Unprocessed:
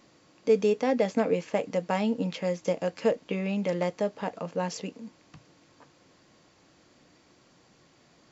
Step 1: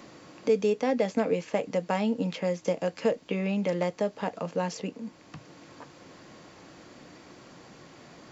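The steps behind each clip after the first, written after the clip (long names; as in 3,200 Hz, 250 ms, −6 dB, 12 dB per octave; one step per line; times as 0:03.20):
multiband upward and downward compressor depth 40%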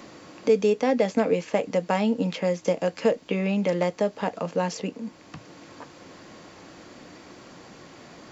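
parametric band 140 Hz −4 dB 0.33 octaves
level +4 dB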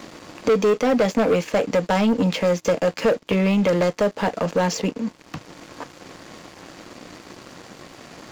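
leveller curve on the samples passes 3
level −3 dB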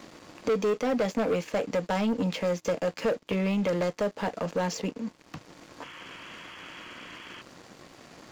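sound drawn into the spectrogram noise, 0:05.82–0:07.42, 890–3,400 Hz −38 dBFS
level −8 dB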